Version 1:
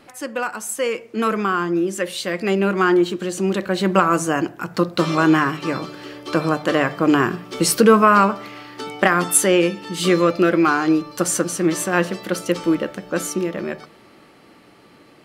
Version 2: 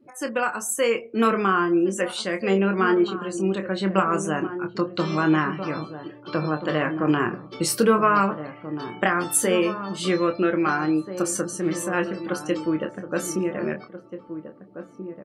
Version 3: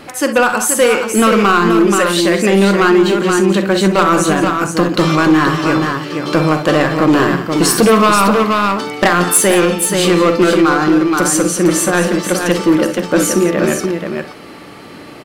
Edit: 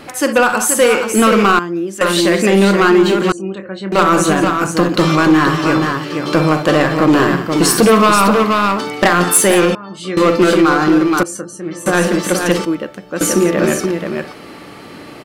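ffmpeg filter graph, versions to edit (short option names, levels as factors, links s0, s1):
-filter_complex "[0:a]asplit=2[s0][s1];[1:a]asplit=3[s2][s3][s4];[2:a]asplit=6[s5][s6][s7][s8][s9][s10];[s5]atrim=end=1.592[s11];[s0]atrim=start=1.588:end=2.012[s12];[s6]atrim=start=2.008:end=3.322[s13];[s2]atrim=start=3.318:end=3.922[s14];[s7]atrim=start=3.918:end=9.752[s15];[s3]atrim=start=9.748:end=10.172[s16];[s8]atrim=start=10.168:end=11.232[s17];[s4]atrim=start=11.228:end=11.862[s18];[s9]atrim=start=11.858:end=12.652[s19];[s1]atrim=start=12.648:end=13.212[s20];[s10]atrim=start=13.208[s21];[s11][s12]acrossfade=d=0.004:c1=hsin:c2=hsin[s22];[s22][s13]acrossfade=d=0.004:c1=hsin:c2=hsin[s23];[s23][s14]acrossfade=d=0.004:c1=hsin:c2=hsin[s24];[s24][s15]acrossfade=d=0.004:c1=hsin:c2=hsin[s25];[s25][s16]acrossfade=d=0.004:c1=hsin:c2=hsin[s26];[s26][s17]acrossfade=d=0.004:c1=hsin:c2=hsin[s27];[s27][s18]acrossfade=d=0.004:c1=hsin:c2=hsin[s28];[s28][s19]acrossfade=d=0.004:c1=hsin:c2=hsin[s29];[s29][s20]acrossfade=d=0.004:c1=hsin:c2=hsin[s30];[s30][s21]acrossfade=d=0.004:c1=hsin:c2=hsin"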